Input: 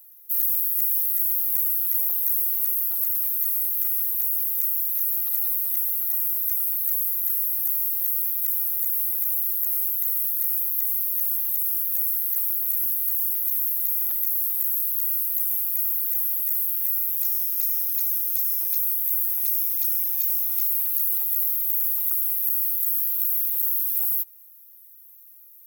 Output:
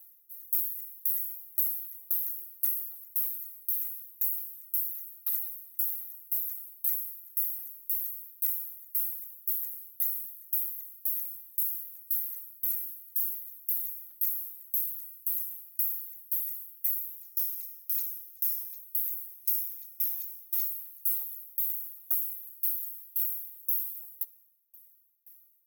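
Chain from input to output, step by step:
low shelf with overshoot 280 Hz +12.5 dB, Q 1.5
notch comb filter 150 Hz
tremolo with a ramp in dB decaying 1.9 Hz, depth 30 dB

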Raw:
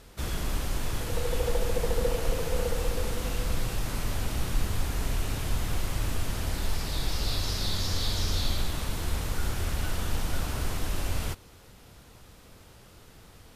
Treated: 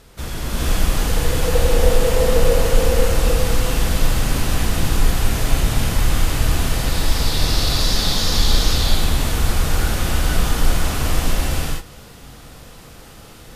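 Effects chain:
reverb whose tail is shaped and stops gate 490 ms rising, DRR −7 dB
level +4 dB

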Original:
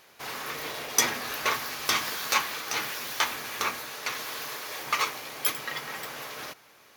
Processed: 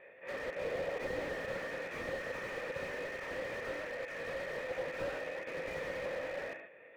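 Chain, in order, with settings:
pitch shifter swept by a sawtooth +4.5 semitones, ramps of 319 ms
volume swells 127 ms
formant resonators in series e
reverb whose tail is shaped and stops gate 170 ms flat, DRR 4.5 dB
slew-rate limiting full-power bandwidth 2.8 Hz
level +14 dB

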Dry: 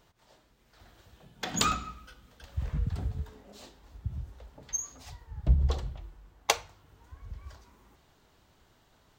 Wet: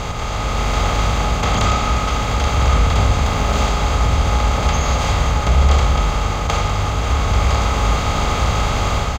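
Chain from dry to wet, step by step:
compressor on every frequency bin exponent 0.2
low-pass filter 1,900 Hz 6 dB per octave
in parallel at +2 dB: brickwall limiter −18.5 dBFS, peak gain reduction 11 dB
on the sum: automatic gain control gain up to 6 dB
0:03.21–0:03.65: bit-depth reduction 8 bits, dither none
repeating echo 532 ms, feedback 59%, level −14 dB
on a send at −6.5 dB: convolution reverb RT60 0.45 s, pre-delay 8 ms
on the sum: level −3.5 dB

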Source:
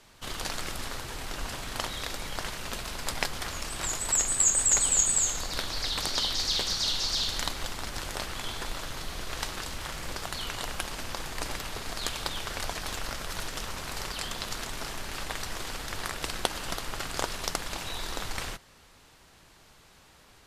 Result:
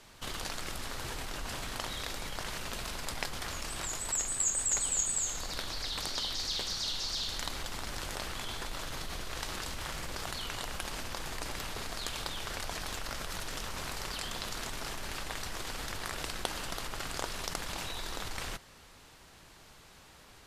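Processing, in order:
in parallel at −1.5 dB: compressor whose output falls as the input rises −39 dBFS, ratio −1
on the sum: level −7.5 dB

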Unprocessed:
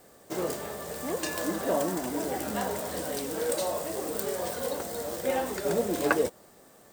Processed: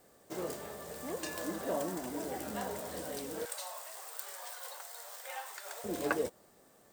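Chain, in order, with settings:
0:03.45–0:05.84: high-pass filter 820 Hz 24 dB per octave
level −7.5 dB

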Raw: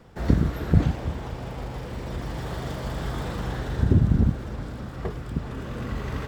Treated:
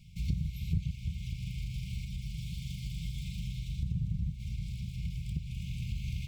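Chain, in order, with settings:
linear-phase brick-wall band-stop 200–2,100 Hz
0:02.05–0:04.40: flanger 1.7 Hz, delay 4.4 ms, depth 2.2 ms, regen −68%
downward compressor 2.5 to 1, threshold −33 dBFS, peak gain reduction 14 dB

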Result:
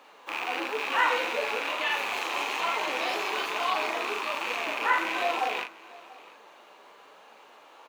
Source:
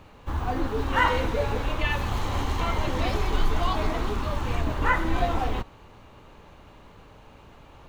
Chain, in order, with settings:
loose part that buzzes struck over −32 dBFS, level −19 dBFS
Bessel high-pass filter 550 Hz, order 4
in parallel at −2.5 dB: brickwall limiter −21 dBFS, peak gain reduction 10.5 dB
on the sum: flanger 1.1 Hz, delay 3.5 ms, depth 8.9 ms, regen +40%
double-tracking delay 39 ms −5.5 dB
single-tap delay 689 ms −21.5 dB
on a send at −19.5 dB: convolution reverb RT60 0.40 s, pre-delay 3 ms

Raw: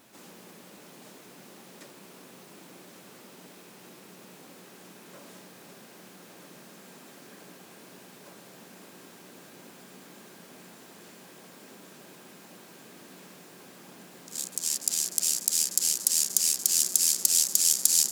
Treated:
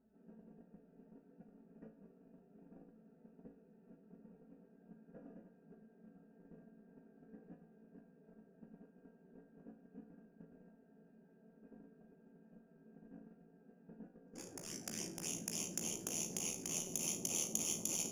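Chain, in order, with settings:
adaptive Wiener filter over 41 samples
noise gate −51 dBFS, range −14 dB
low-shelf EQ 87 Hz +11 dB
flanger swept by the level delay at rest 4.6 ms, full sweep at −24.5 dBFS
moving average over 11 samples
tuned comb filter 55 Hz, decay 0.38 s, harmonics all, mix 80%
saturating transformer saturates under 2,300 Hz
level +12 dB

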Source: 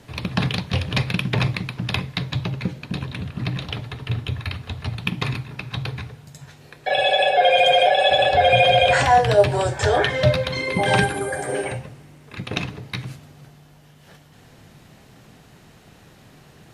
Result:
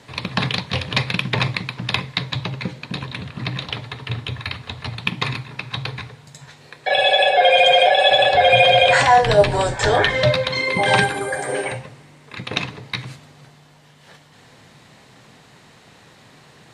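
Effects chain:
0:09.21–0:10.23: sub-octave generator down 2 octaves, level +3 dB
octave-band graphic EQ 125/250/500/1,000/2,000/4,000/8,000 Hz +7/+6/+8/+11/+10/+11/+11 dB
level −10 dB

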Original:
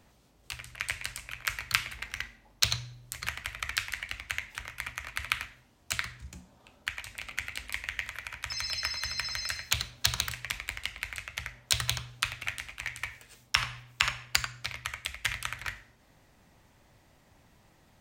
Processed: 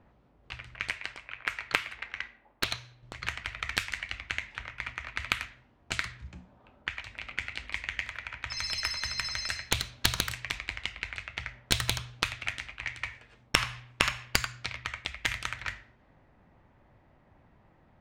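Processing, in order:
stylus tracing distortion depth 0.11 ms
low-pass that shuts in the quiet parts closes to 1,600 Hz, open at −28.5 dBFS
0:00.90–0:03.03: bass and treble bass −11 dB, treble −10 dB
level +1 dB

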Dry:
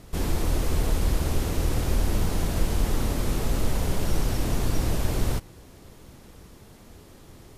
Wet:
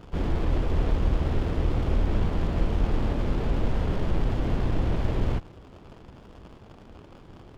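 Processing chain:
surface crackle 160 per second −32 dBFS
elliptic low-pass filter 3,500 Hz
windowed peak hold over 17 samples
level +1.5 dB

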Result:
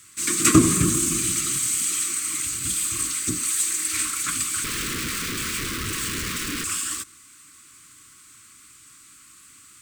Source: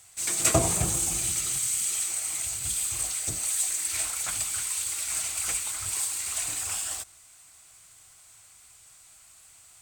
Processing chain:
low-shelf EQ 180 Hz −5.5 dB
hollow resonant body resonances 270/690/1,100 Hz, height 17 dB, ringing for 20 ms
0:04.64–0:06.64: comparator with hysteresis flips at −29 dBFS
Butterworth band-reject 730 Hz, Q 0.66
level +3.5 dB

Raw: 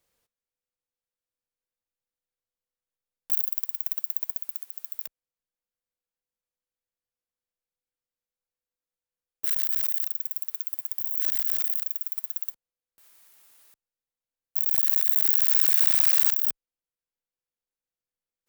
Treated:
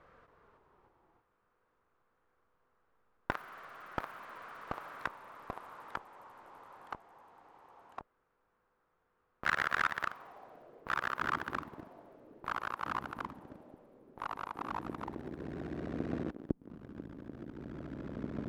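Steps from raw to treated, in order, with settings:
low-pass filter sweep 1,300 Hz → 310 Hz, 0:10.04–0:11.12
notch filter 870 Hz, Q 12
delay with pitch and tempo change per echo 278 ms, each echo −2 semitones, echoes 3
level +18 dB

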